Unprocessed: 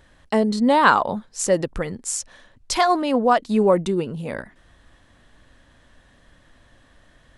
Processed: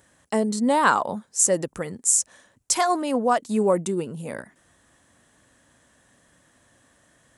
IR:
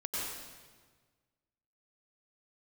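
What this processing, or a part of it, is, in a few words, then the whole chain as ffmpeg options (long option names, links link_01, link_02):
budget condenser microphone: -af "highpass=110,highshelf=frequency=5600:width_type=q:width=1.5:gain=9.5,volume=-3.5dB"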